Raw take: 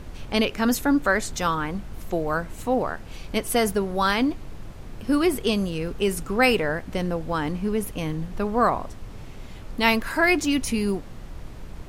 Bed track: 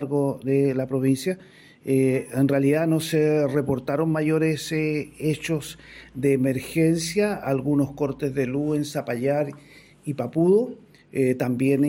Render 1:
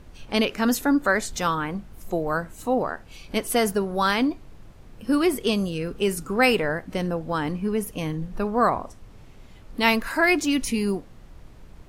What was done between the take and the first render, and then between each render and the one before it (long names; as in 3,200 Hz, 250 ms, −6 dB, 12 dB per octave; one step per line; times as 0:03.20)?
noise reduction from a noise print 8 dB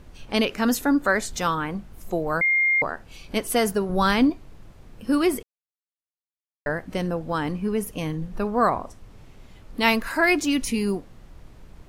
0:02.41–0:02.82: beep over 2,120 Hz −17 dBFS
0:03.89–0:04.30: low-shelf EQ 210 Hz +10.5 dB
0:05.43–0:06.66: silence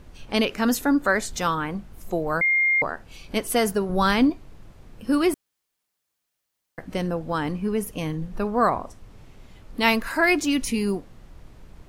0:05.34–0:06.78: fill with room tone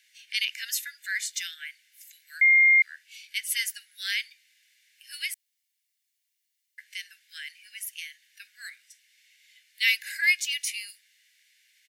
Butterworth high-pass 1,700 Hz 96 dB per octave
comb filter 1.4 ms, depth 37%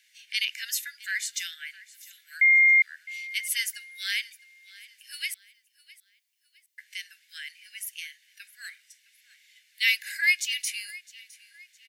repeating echo 660 ms, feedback 36%, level −20.5 dB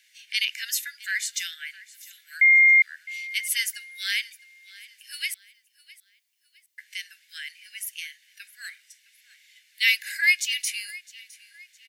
level +2.5 dB